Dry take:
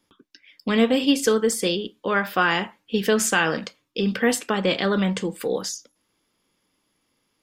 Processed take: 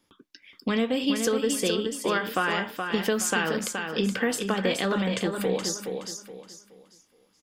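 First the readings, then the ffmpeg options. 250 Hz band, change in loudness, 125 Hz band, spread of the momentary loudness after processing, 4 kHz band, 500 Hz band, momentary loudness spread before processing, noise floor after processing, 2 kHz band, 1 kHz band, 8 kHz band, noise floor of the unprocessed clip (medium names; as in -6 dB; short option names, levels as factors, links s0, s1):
-4.0 dB, -4.0 dB, -3.5 dB, 9 LU, -3.5 dB, -4.0 dB, 8 LU, -67 dBFS, -4.5 dB, -4.0 dB, -2.5 dB, -73 dBFS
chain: -filter_complex "[0:a]acompressor=threshold=0.0708:ratio=3,asplit=2[s0][s1];[s1]aecho=0:1:422|844|1266|1688:0.501|0.155|0.0482|0.0149[s2];[s0][s2]amix=inputs=2:normalize=0"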